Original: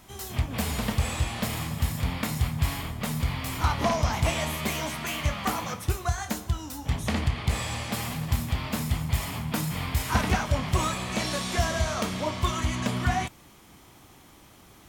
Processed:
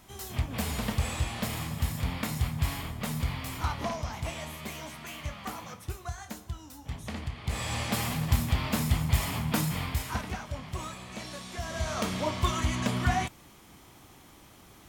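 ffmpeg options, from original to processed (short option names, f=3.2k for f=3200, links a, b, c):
-af "volume=18.5dB,afade=t=out:st=3.22:d=0.83:silence=0.446684,afade=t=in:st=7.41:d=0.4:silence=0.281838,afade=t=out:st=9.59:d=0.65:silence=0.237137,afade=t=in:st=11.62:d=0.47:silence=0.298538"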